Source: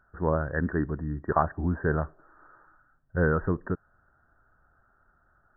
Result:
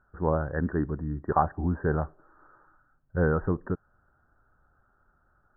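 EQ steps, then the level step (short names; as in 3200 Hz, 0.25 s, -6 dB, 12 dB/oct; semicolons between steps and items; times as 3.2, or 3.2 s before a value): LPF 1400 Hz 12 dB/oct; notch 670 Hz, Q 13; dynamic EQ 770 Hz, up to +6 dB, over -47 dBFS, Q 5.2; 0.0 dB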